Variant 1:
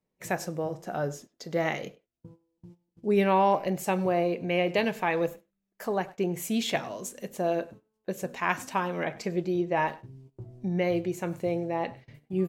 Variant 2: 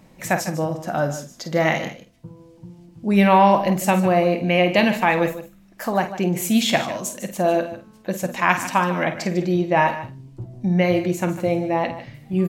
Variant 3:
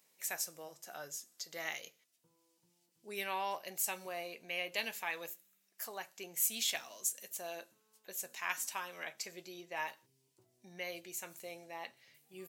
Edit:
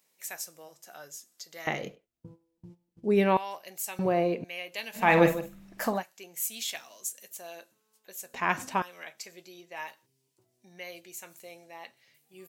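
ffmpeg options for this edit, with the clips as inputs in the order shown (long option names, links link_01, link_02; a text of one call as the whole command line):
ffmpeg -i take0.wav -i take1.wav -i take2.wav -filter_complex "[0:a]asplit=3[link_01][link_02][link_03];[2:a]asplit=5[link_04][link_05][link_06][link_07][link_08];[link_04]atrim=end=1.672[link_09];[link_01]atrim=start=1.668:end=3.372[link_10];[link_05]atrim=start=3.368:end=3.992[link_11];[link_02]atrim=start=3.988:end=4.442[link_12];[link_06]atrim=start=4.438:end=5.17[link_13];[1:a]atrim=start=4.93:end=6.04[link_14];[link_07]atrim=start=5.8:end=8.342[link_15];[link_03]atrim=start=8.338:end=8.822[link_16];[link_08]atrim=start=8.818[link_17];[link_09][link_10]acrossfade=duration=0.004:curve1=hsin:curve2=hsin[link_18];[link_18][link_11]acrossfade=duration=0.004:curve1=hsin:curve2=hsin[link_19];[link_19][link_12]acrossfade=duration=0.004:curve1=hsin:curve2=hsin[link_20];[link_20][link_13]acrossfade=duration=0.004:curve1=hsin:curve2=hsin[link_21];[link_21][link_14]acrossfade=duration=0.24:curve1=tri:curve2=tri[link_22];[link_22][link_15]acrossfade=duration=0.24:curve1=tri:curve2=tri[link_23];[link_23][link_16]acrossfade=duration=0.004:curve1=hsin:curve2=hsin[link_24];[link_24][link_17]acrossfade=duration=0.004:curve1=hsin:curve2=hsin" out.wav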